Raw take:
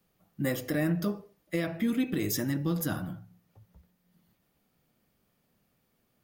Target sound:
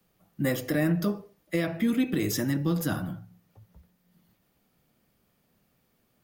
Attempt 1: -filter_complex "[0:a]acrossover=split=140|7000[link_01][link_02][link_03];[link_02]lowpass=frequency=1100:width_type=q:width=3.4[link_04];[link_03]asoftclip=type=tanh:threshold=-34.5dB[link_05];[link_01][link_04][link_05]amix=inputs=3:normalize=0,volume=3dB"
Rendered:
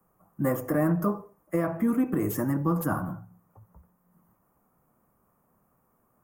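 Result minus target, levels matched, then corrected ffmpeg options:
1,000 Hz band +7.0 dB
-filter_complex "[0:a]acrossover=split=140|7000[link_01][link_02][link_03];[link_03]asoftclip=type=tanh:threshold=-34.5dB[link_04];[link_01][link_02][link_04]amix=inputs=3:normalize=0,volume=3dB"

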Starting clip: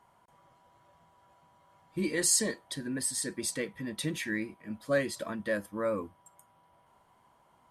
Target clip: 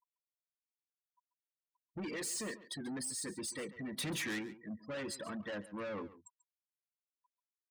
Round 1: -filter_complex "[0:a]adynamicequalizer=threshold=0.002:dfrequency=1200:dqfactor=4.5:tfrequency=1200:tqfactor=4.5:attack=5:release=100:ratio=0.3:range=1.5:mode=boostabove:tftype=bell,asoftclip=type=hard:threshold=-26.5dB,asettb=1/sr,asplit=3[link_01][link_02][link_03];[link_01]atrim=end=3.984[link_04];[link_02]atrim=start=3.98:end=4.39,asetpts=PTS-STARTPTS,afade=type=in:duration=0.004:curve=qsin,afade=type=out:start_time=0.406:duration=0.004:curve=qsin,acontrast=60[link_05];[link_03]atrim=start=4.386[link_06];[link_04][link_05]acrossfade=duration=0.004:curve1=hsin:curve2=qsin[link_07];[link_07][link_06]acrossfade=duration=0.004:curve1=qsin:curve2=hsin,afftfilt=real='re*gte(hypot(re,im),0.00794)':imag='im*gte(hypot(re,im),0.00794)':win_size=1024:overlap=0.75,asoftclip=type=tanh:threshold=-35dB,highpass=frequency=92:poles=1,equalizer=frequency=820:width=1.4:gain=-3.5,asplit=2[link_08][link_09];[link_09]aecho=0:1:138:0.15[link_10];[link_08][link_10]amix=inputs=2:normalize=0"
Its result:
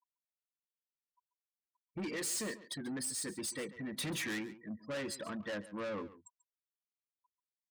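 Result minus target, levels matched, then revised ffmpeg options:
hard clipping: distortion −7 dB
-filter_complex "[0:a]adynamicequalizer=threshold=0.002:dfrequency=1200:dqfactor=4.5:tfrequency=1200:tqfactor=4.5:attack=5:release=100:ratio=0.3:range=1.5:mode=boostabove:tftype=bell,asoftclip=type=hard:threshold=-35.5dB,asettb=1/sr,asplit=3[link_01][link_02][link_03];[link_01]atrim=end=3.984[link_04];[link_02]atrim=start=3.98:end=4.39,asetpts=PTS-STARTPTS,afade=type=in:duration=0.004:curve=qsin,afade=type=out:start_time=0.406:duration=0.004:curve=qsin,acontrast=60[link_05];[link_03]atrim=start=4.386[link_06];[link_04][link_05]acrossfade=duration=0.004:curve1=hsin:curve2=qsin[link_07];[link_07][link_06]acrossfade=duration=0.004:curve1=qsin:curve2=hsin,afftfilt=real='re*gte(hypot(re,im),0.00794)':imag='im*gte(hypot(re,im),0.00794)':win_size=1024:overlap=0.75,asoftclip=type=tanh:threshold=-35dB,highpass=frequency=92:poles=1,equalizer=frequency=820:width=1.4:gain=-3.5,asplit=2[link_08][link_09];[link_09]aecho=0:1:138:0.15[link_10];[link_08][link_10]amix=inputs=2:normalize=0"

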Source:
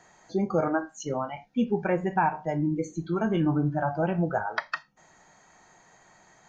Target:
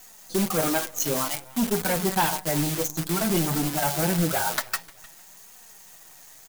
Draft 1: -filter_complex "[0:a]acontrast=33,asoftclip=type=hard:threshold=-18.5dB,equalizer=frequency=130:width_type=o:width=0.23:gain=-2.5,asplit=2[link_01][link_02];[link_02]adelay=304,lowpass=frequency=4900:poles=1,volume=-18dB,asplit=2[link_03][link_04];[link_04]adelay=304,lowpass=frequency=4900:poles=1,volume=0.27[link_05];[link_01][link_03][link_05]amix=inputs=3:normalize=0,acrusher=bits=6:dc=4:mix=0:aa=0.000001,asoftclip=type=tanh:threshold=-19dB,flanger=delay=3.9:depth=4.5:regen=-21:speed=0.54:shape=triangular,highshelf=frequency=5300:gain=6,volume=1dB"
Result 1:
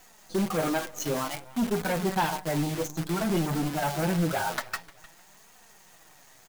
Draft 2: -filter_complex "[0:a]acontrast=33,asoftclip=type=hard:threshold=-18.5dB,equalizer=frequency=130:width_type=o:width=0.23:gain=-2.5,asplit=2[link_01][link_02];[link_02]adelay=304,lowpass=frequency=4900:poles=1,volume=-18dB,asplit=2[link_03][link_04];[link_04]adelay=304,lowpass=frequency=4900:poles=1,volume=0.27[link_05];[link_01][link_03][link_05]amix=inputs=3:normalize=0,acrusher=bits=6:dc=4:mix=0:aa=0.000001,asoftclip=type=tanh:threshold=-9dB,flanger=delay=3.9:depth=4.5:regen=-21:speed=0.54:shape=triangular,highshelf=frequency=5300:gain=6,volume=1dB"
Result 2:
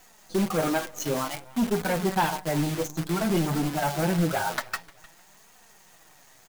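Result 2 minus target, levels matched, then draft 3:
8,000 Hz band −6.0 dB
-filter_complex "[0:a]acontrast=33,asoftclip=type=hard:threshold=-18.5dB,equalizer=frequency=130:width_type=o:width=0.23:gain=-2.5,asplit=2[link_01][link_02];[link_02]adelay=304,lowpass=frequency=4900:poles=1,volume=-18dB,asplit=2[link_03][link_04];[link_04]adelay=304,lowpass=frequency=4900:poles=1,volume=0.27[link_05];[link_01][link_03][link_05]amix=inputs=3:normalize=0,acrusher=bits=6:dc=4:mix=0:aa=0.000001,asoftclip=type=tanh:threshold=-9dB,flanger=delay=3.9:depth=4.5:regen=-21:speed=0.54:shape=triangular,highshelf=frequency=5300:gain=18,volume=1dB"

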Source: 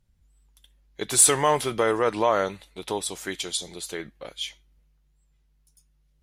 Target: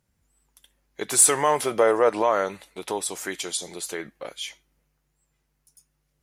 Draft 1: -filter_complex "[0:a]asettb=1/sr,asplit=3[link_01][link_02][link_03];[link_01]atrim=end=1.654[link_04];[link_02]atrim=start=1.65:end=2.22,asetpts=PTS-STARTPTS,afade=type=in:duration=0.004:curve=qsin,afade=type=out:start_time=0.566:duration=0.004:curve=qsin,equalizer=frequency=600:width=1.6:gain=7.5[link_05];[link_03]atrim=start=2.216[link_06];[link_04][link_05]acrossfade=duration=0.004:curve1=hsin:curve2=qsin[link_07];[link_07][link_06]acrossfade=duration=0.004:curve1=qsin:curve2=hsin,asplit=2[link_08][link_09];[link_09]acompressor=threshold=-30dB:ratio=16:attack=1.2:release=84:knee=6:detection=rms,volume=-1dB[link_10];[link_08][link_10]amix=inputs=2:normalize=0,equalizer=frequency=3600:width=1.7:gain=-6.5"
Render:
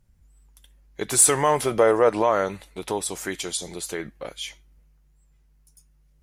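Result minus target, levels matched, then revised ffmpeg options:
250 Hz band +2.5 dB
-filter_complex "[0:a]asettb=1/sr,asplit=3[link_01][link_02][link_03];[link_01]atrim=end=1.654[link_04];[link_02]atrim=start=1.65:end=2.22,asetpts=PTS-STARTPTS,afade=type=in:duration=0.004:curve=qsin,afade=type=out:start_time=0.566:duration=0.004:curve=qsin,equalizer=frequency=600:width=1.6:gain=7.5[link_05];[link_03]atrim=start=2.216[link_06];[link_04][link_05]acrossfade=duration=0.004:curve1=hsin:curve2=qsin[link_07];[link_07][link_06]acrossfade=duration=0.004:curve1=qsin:curve2=hsin,asplit=2[link_08][link_09];[link_09]acompressor=threshold=-30dB:ratio=16:attack=1.2:release=84:knee=6:detection=rms,volume=-1dB[link_10];[link_08][link_10]amix=inputs=2:normalize=0,highpass=frequency=300:poles=1,equalizer=frequency=3600:width=1.7:gain=-6.5"

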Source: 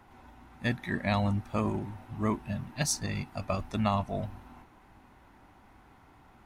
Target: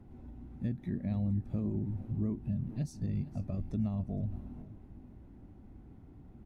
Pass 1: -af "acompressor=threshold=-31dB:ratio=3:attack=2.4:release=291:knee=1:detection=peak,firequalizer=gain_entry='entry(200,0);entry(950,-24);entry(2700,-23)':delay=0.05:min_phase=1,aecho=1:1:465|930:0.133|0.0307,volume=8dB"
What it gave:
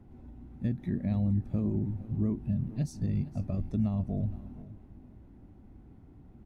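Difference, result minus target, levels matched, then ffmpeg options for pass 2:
downward compressor: peak gain reduction −4 dB
-af "acompressor=threshold=-37dB:ratio=3:attack=2.4:release=291:knee=1:detection=peak,firequalizer=gain_entry='entry(200,0);entry(950,-24);entry(2700,-23)':delay=0.05:min_phase=1,aecho=1:1:465|930:0.133|0.0307,volume=8dB"

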